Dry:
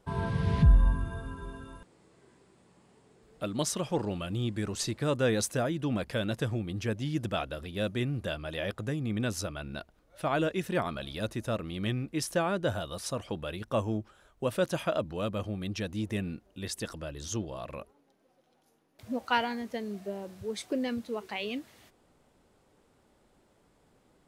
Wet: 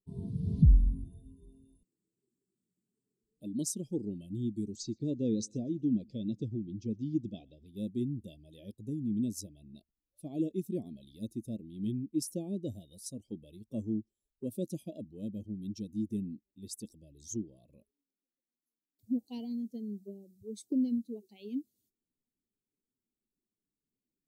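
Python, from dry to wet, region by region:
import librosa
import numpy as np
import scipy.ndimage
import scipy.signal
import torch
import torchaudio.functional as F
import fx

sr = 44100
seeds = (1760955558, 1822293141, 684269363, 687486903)

y = fx.chain(x, sr, fx.lowpass(hz=6400.0, slope=24),
    fx.echo_feedback(ms=121, feedback_pct=39, wet_db=-20.5), at=(4.76, 7.66))
y = fx.bin_expand(y, sr, power=1.5)
y = scipy.signal.sosfilt(scipy.signal.cheby1(2, 1.0, [270.0, 6800.0], 'bandstop', fs=sr, output='sos'), y)
y = fx.dynamic_eq(y, sr, hz=280.0, q=1.1, threshold_db=-50.0, ratio=4.0, max_db=6)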